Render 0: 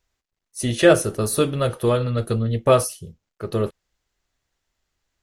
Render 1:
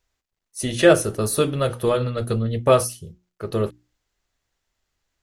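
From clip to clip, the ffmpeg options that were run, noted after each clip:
-af "bandreject=f=60:t=h:w=6,bandreject=f=120:t=h:w=6,bandreject=f=180:t=h:w=6,bandreject=f=240:t=h:w=6,bandreject=f=300:t=h:w=6,bandreject=f=360:t=h:w=6"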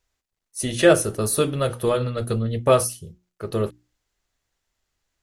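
-af "equalizer=f=10k:t=o:w=1:g=3,volume=-1dB"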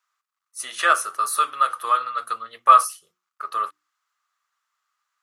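-af "highpass=f=1.2k:t=q:w=8.4,volume=-3dB"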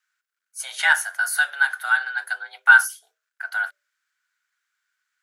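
-af "afreqshift=280,aeval=exprs='0.841*(cos(1*acos(clip(val(0)/0.841,-1,1)))-cos(1*PI/2))+0.0133*(cos(2*acos(clip(val(0)/0.841,-1,1)))-cos(2*PI/2))':c=same"

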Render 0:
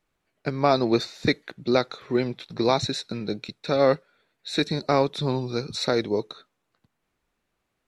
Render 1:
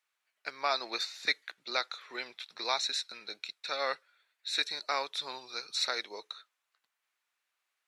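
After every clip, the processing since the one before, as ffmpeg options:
-af "highpass=1.3k,volume=-1.5dB"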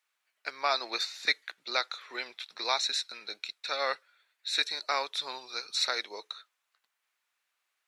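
-af "lowshelf=f=170:g=-11,volume=2.5dB"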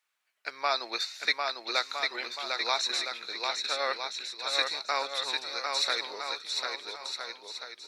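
-af "aecho=1:1:750|1312|1734|2051|2288:0.631|0.398|0.251|0.158|0.1"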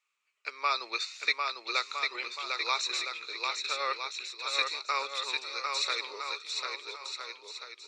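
-af "highpass=340,equalizer=f=410:t=q:w=4:g=5,equalizer=f=710:t=q:w=4:g=-9,equalizer=f=1.2k:t=q:w=4:g=8,equalizer=f=1.6k:t=q:w=4:g=-7,equalizer=f=2.5k:t=q:w=4:g=9,equalizer=f=7.1k:t=q:w=4:g=5,lowpass=f=8.8k:w=0.5412,lowpass=f=8.8k:w=1.3066,volume=-3.5dB"

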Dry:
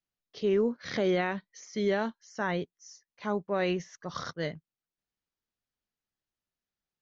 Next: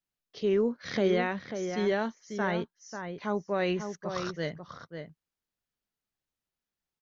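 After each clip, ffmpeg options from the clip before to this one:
-filter_complex "[0:a]asplit=2[a][b];[b]adelay=542.3,volume=-7dB,highshelf=f=4k:g=-12.2[c];[a][c]amix=inputs=2:normalize=0"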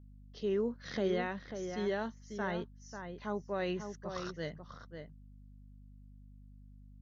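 -af "bandreject=f=2.3k:w=9.3,aeval=exprs='val(0)+0.00447*(sin(2*PI*50*n/s)+sin(2*PI*2*50*n/s)/2+sin(2*PI*3*50*n/s)/3+sin(2*PI*4*50*n/s)/4+sin(2*PI*5*50*n/s)/5)':c=same,volume=-6.5dB"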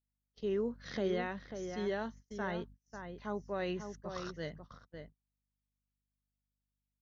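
-af "agate=range=-33dB:threshold=-49dB:ratio=16:detection=peak,volume=-1.5dB"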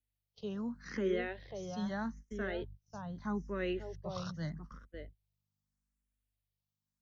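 -filter_complex "[0:a]acrossover=split=190|820|1600[a][b][c][d];[a]dynaudnorm=f=200:g=17:m=8dB[e];[e][b][c][d]amix=inputs=4:normalize=0,asplit=2[f][g];[g]afreqshift=0.8[h];[f][h]amix=inputs=2:normalize=1,volume=2dB"

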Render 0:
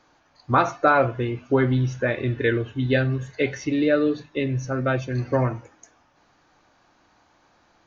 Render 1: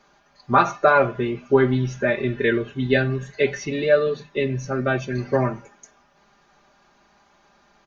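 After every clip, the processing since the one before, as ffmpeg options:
-af "aecho=1:1:5:0.87"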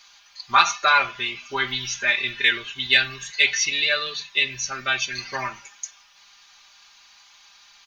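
-af "equalizer=f=125:t=o:w=1:g=-9,equalizer=f=250:t=o:w=1:g=-8,equalizer=f=500:t=o:w=1:g=-11,equalizer=f=1k:t=o:w=1:g=7,equalizer=f=2k:t=o:w=1:g=12,equalizer=f=4k:t=o:w=1:g=4,aexciter=amount=8.6:drive=2.8:freq=2.7k,volume=-7dB"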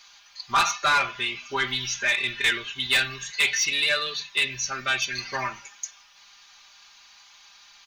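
-af "asoftclip=type=tanh:threshold=-15dB"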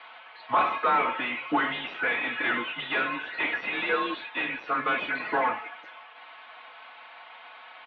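-filter_complex "[0:a]asplit=2[a][b];[b]highpass=f=720:p=1,volume=22dB,asoftclip=type=tanh:threshold=-15dB[c];[a][c]amix=inputs=2:normalize=0,lowpass=f=1.5k:p=1,volume=-6dB,aemphasis=mode=reproduction:type=riaa,highpass=f=390:t=q:w=0.5412,highpass=f=390:t=q:w=1.307,lowpass=f=3.5k:t=q:w=0.5176,lowpass=f=3.5k:t=q:w=0.7071,lowpass=f=3.5k:t=q:w=1.932,afreqshift=-110"

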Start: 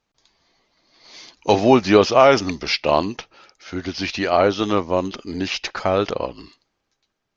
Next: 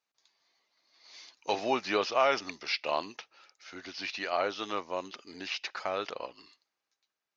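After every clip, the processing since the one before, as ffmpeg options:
-filter_complex "[0:a]bandreject=f=3.2k:w=23,acrossover=split=5500[a][b];[b]acompressor=threshold=-47dB:ratio=4:attack=1:release=60[c];[a][c]amix=inputs=2:normalize=0,highpass=f=1.1k:p=1,volume=-8dB"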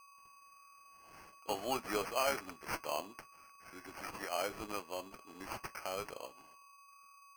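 -af "aeval=exprs='val(0)+0.00316*sin(2*PI*4800*n/s)':c=same,flanger=delay=6:depth=2.5:regen=-73:speed=1.1:shape=sinusoidal,acrusher=samples=12:mix=1:aa=0.000001,volume=-3dB"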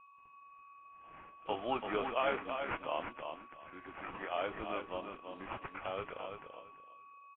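-filter_complex "[0:a]asplit=2[a][b];[b]aecho=0:1:336|672|1008:0.473|0.0946|0.0189[c];[a][c]amix=inputs=2:normalize=0,volume=1dB" -ar 8000 -c:a nellymoser

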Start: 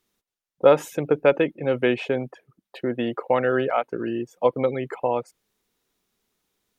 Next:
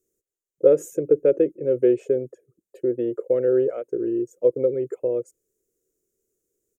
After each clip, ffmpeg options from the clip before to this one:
-af "firequalizer=gain_entry='entry(120,0);entry(220,-7);entry(360,10);entry(520,6);entry(820,-25);entry(1400,-13);entry(2200,-16);entry(3800,-20);entry(6900,7);entry(10000,2)':delay=0.05:min_phase=1,volume=-4dB"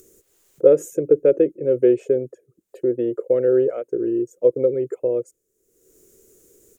-af "acompressor=mode=upward:threshold=-39dB:ratio=2.5,volume=2.5dB"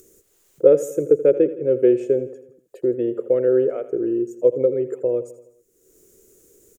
-af "aecho=1:1:82|164|246|328|410:0.178|0.096|0.0519|0.028|0.0151"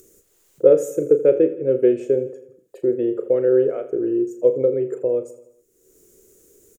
-filter_complex "[0:a]asplit=2[a][b];[b]adelay=37,volume=-10dB[c];[a][c]amix=inputs=2:normalize=0"

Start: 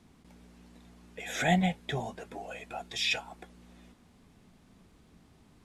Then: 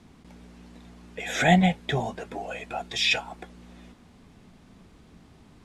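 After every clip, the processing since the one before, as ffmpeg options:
-af "highshelf=f=11k:g=-11.5,volume=7dB"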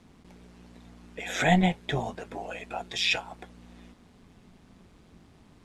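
-af "tremolo=f=180:d=0.571"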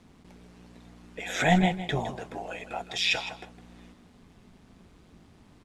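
-af "aecho=1:1:160|320:0.237|0.0403"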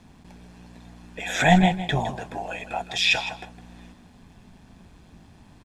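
-af "aecho=1:1:1.2:0.34,volume=4dB"

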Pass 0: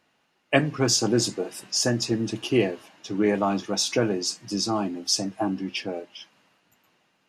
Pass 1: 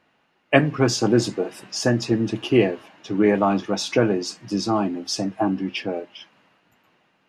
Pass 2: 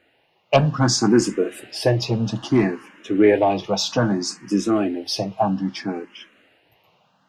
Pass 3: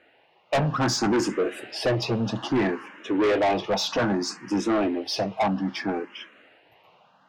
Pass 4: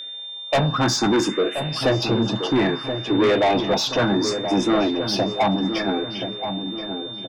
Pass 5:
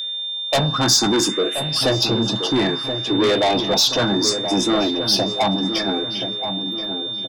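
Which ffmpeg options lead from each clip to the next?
-af "bass=f=250:g=0,treble=f=4k:g=-11,volume=4.5dB"
-filter_complex "[0:a]asoftclip=type=tanh:threshold=-7.5dB,asplit=2[a][b];[b]afreqshift=0.62[c];[a][c]amix=inputs=2:normalize=1,volume=5.5dB"
-filter_complex "[0:a]asplit=2[a][b];[b]highpass=f=720:p=1,volume=12dB,asoftclip=type=tanh:threshold=-1dB[c];[a][c]amix=inputs=2:normalize=0,lowpass=f=1.5k:p=1,volume=-6dB,asoftclip=type=tanh:threshold=-18.5dB"
-filter_complex "[0:a]aeval=exprs='val(0)+0.0178*sin(2*PI*3600*n/s)':c=same,asplit=2[a][b];[b]adelay=1027,lowpass=f=1.1k:p=1,volume=-7dB,asplit=2[c][d];[d]adelay=1027,lowpass=f=1.1k:p=1,volume=0.52,asplit=2[e][f];[f]adelay=1027,lowpass=f=1.1k:p=1,volume=0.52,asplit=2[g][h];[h]adelay=1027,lowpass=f=1.1k:p=1,volume=0.52,asplit=2[i][j];[j]adelay=1027,lowpass=f=1.1k:p=1,volume=0.52,asplit=2[k][l];[l]adelay=1027,lowpass=f=1.1k:p=1,volume=0.52[m];[a][c][e][g][i][k][m]amix=inputs=7:normalize=0,volume=3.5dB"
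-af "aexciter=amount=3.4:drive=3.5:freq=3.4k"

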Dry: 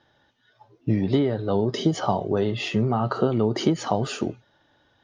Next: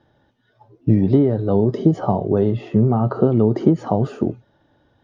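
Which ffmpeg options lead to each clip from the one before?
-filter_complex "[0:a]tiltshelf=f=900:g=7,acrossover=split=1700[a][b];[b]acompressor=threshold=-50dB:ratio=6[c];[a][c]amix=inputs=2:normalize=0,volume=1dB"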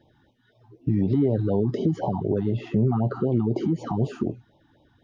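-af "alimiter=limit=-13.5dB:level=0:latency=1:release=188,afftfilt=real='re*(1-between(b*sr/1024,470*pow(1600/470,0.5+0.5*sin(2*PI*4*pts/sr))/1.41,470*pow(1600/470,0.5+0.5*sin(2*PI*4*pts/sr))*1.41))':imag='im*(1-between(b*sr/1024,470*pow(1600/470,0.5+0.5*sin(2*PI*4*pts/sr))/1.41,470*pow(1600/470,0.5+0.5*sin(2*PI*4*pts/sr))*1.41))':win_size=1024:overlap=0.75"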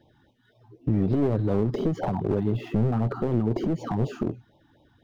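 -filter_complex "[0:a]acrossover=split=2500[a][b];[b]acrusher=bits=3:mode=log:mix=0:aa=0.000001[c];[a][c]amix=inputs=2:normalize=0,aeval=exprs='clip(val(0),-1,0.0596)':c=same"

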